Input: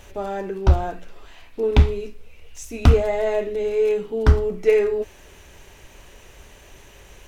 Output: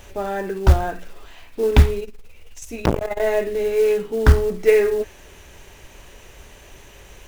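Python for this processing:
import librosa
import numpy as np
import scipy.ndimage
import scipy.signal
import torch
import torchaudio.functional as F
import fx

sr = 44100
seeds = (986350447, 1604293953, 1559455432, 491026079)

y = fx.dynamic_eq(x, sr, hz=1700.0, q=3.0, threshold_db=-49.0, ratio=4.0, max_db=6)
y = fx.quant_companded(y, sr, bits=6)
y = fx.transformer_sat(y, sr, knee_hz=570.0, at=(2.0, 3.2))
y = y * 10.0 ** (2.0 / 20.0)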